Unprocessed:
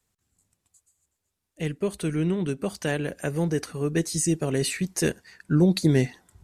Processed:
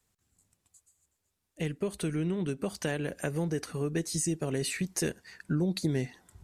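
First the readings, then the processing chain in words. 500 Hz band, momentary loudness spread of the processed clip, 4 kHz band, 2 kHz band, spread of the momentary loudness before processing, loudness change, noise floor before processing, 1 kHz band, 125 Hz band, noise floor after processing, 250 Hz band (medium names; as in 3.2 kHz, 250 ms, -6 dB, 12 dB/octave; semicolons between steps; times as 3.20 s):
-6.5 dB, 4 LU, -5.5 dB, -5.5 dB, 8 LU, -6.5 dB, -81 dBFS, -5.5 dB, -7.0 dB, -81 dBFS, -7.0 dB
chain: compression 2.5:1, threshold -30 dBFS, peak gain reduction 10.5 dB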